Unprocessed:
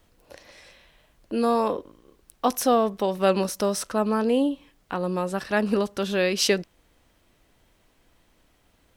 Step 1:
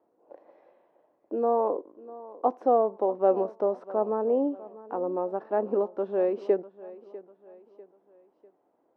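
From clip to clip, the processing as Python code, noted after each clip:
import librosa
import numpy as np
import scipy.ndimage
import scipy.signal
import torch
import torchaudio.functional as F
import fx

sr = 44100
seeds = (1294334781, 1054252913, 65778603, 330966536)

y = scipy.signal.sosfilt(scipy.signal.cheby1(2, 1.0, [330.0, 840.0], 'bandpass', fs=sr, output='sos'), x)
y = fx.echo_feedback(y, sr, ms=647, feedback_pct=42, wet_db=-18.5)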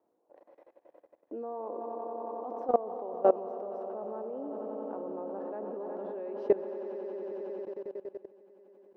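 y = fx.echo_swell(x, sr, ms=91, loudest=5, wet_db=-12.0)
y = fx.level_steps(y, sr, step_db=19)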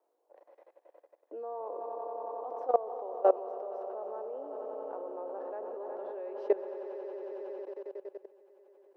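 y = scipy.signal.sosfilt(scipy.signal.butter(4, 400.0, 'highpass', fs=sr, output='sos'), x)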